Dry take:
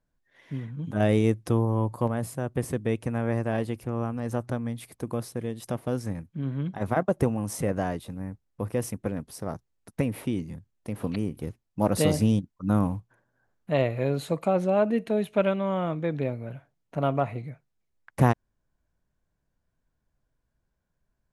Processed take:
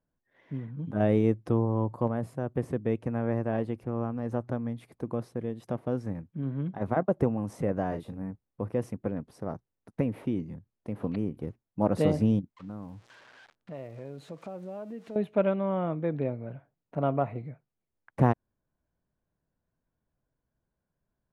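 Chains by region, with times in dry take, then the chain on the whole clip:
7.88–8.31 s: treble shelf 6.2 kHz +5.5 dB + doubling 36 ms -6.5 dB
12.53–15.16 s: zero-crossing glitches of -26 dBFS + level-controlled noise filter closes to 2.9 kHz, open at -19.5 dBFS + compression 2.5:1, threshold -42 dBFS
whole clip: low-pass 1 kHz 6 dB/octave; bass shelf 68 Hz -11.5 dB

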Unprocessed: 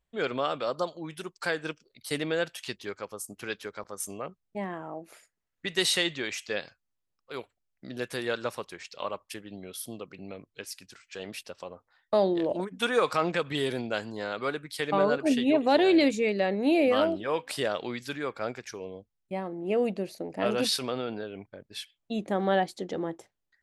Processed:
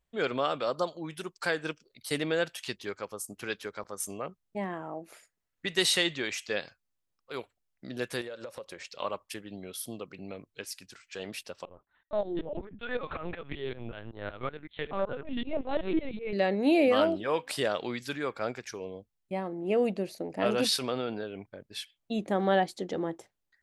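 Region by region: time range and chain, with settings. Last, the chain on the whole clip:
8.21–8.89 s: peaking EQ 540 Hz +15 dB 0.26 oct + compression 12:1, threshold -37 dBFS
11.65–16.33 s: compression 1.5:1, threshold -28 dBFS + tremolo saw up 5.3 Hz, depth 95% + LPC vocoder at 8 kHz pitch kept
whole clip: none

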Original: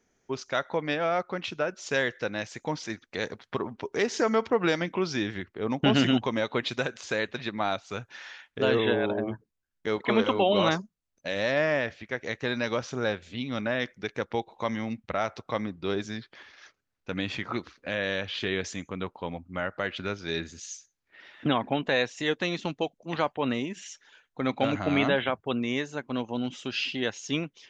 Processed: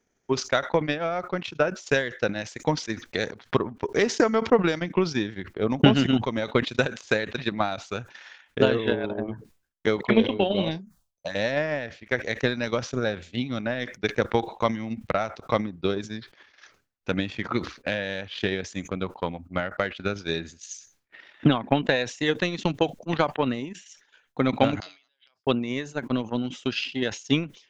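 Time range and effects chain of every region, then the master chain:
10.01–11.35 s: doubling 31 ms -14 dB + touch-sensitive phaser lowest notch 250 Hz, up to 1.3 kHz, full sweep at -20.5 dBFS
24.80–25.47 s: compression 10:1, threshold -26 dBFS + band-pass filter 5 kHz, Q 12
whole clip: dynamic bell 160 Hz, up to +4 dB, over -37 dBFS, Q 0.76; transient shaper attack +11 dB, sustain -11 dB; decay stretcher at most 140 dB/s; trim -3 dB

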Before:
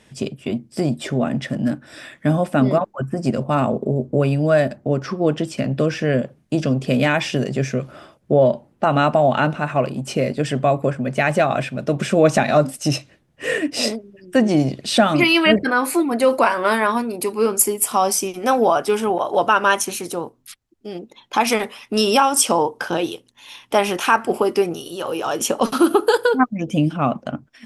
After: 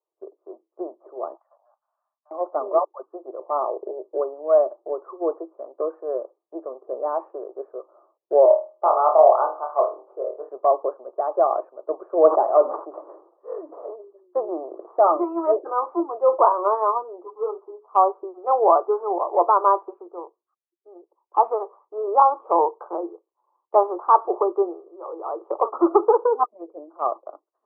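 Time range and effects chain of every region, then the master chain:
1.34–2.31 s: steep high-pass 750 Hz + compression 3:1, threshold -36 dBFS
8.45–10.49 s: high-pass 450 Hz + flutter echo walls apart 4.4 m, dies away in 0.37 s
12.24–15.15 s: CVSD coder 64 kbps + distance through air 130 m + decay stretcher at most 44 dB/s
17.24–17.95 s: hum notches 60/120/180/240/300/360/420 Hz + three-phase chorus
whole clip: Chebyshev band-pass 340–1200 Hz, order 5; tilt shelf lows -4 dB; three bands expanded up and down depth 70%

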